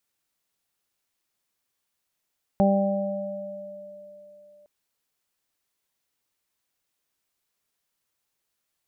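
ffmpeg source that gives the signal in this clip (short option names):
-f lavfi -i "aevalsrc='0.133*pow(10,-3*t/2.21)*sin(2*PI*197*t)+0.0376*pow(10,-3*t/0.95)*sin(2*PI*394*t)+0.1*pow(10,-3*t/3.86)*sin(2*PI*591*t)+0.0668*pow(10,-3*t/1.55)*sin(2*PI*788*t)':d=2.06:s=44100"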